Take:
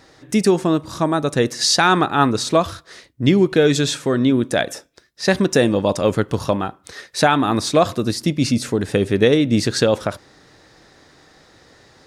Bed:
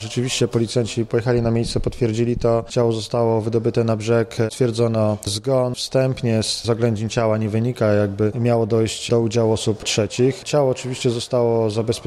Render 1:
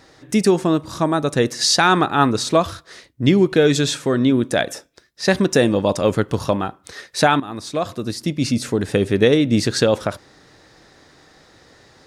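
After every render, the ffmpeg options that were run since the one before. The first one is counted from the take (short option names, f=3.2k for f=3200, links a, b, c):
-filter_complex "[0:a]asplit=2[a][b];[a]atrim=end=7.4,asetpts=PTS-STARTPTS,afade=t=out:st=7.396:d=0.004:c=hsin:silence=0.188365[c];[b]atrim=start=7.4,asetpts=PTS-STARTPTS,afade=t=in:d=1.38:silence=0.188365[d];[c][d]concat=n=2:v=0:a=1"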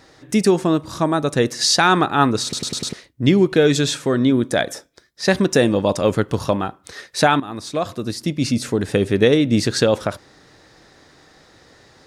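-filter_complex "[0:a]asettb=1/sr,asplit=3[a][b][c];[a]atrim=end=4.174[d];[b]atrim=start=4.17:end=5.23,asetpts=PTS-STARTPTS,afade=t=in:d=0.004:c=qsin,afade=t=out:st=1.056:d=0.004:c=qsin,bandreject=f=2.7k:w=9.8[e];[c]atrim=start=5.226[f];[d][e]acrossfade=d=0.004:c1=hsin:c2=qsin[g];[g][f]acrossfade=d=0.004:c1=qsin:c2=hsin,asplit=6[h][i][j][k][l][m];[h]atrim=end=2.532[n];[i]atrim=start=2.428:end=2.532[o];[j]atrim=start=2.428:end=2.532[p];[k]atrim=start=2.428:end=2.532[q];[l]atrim=start=2.428:end=2.532[r];[m]atrim=start=2.928[s];[n][o]acrossfade=d=0.004:c1=hsin:c2=hsin[t];[t][p]acrossfade=d=0.004:c1=hsin:c2=hsin[u];[u][q]acrossfade=d=0.004:c1=hsin:c2=hsin[v];[v][r]acrossfade=d=0.004:c1=hsin:c2=hsin[w];[w][s]acrossfade=d=0.004:c1=hsin:c2=hsin"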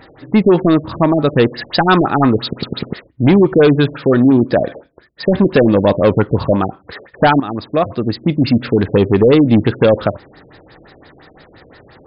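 -filter_complex "[0:a]asplit=2[a][b];[b]aeval=exprs='0.75*sin(PI/2*2.82*val(0)/0.75)':c=same,volume=-9dB[c];[a][c]amix=inputs=2:normalize=0,afftfilt=real='re*lt(b*sr/1024,650*pow(5300/650,0.5+0.5*sin(2*PI*5.8*pts/sr)))':imag='im*lt(b*sr/1024,650*pow(5300/650,0.5+0.5*sin(2*PI*5.8*pts/sr)))':win_size=1024:overlap=0.75"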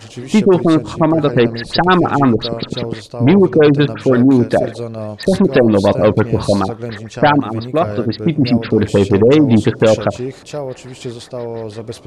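-filter_complex "[1:a]volume=-7dB[a];[0:a][a]amix=inputs=2:normalize=0"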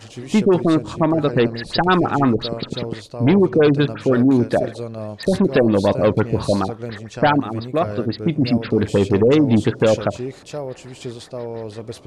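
-af "volume=-4.5dB"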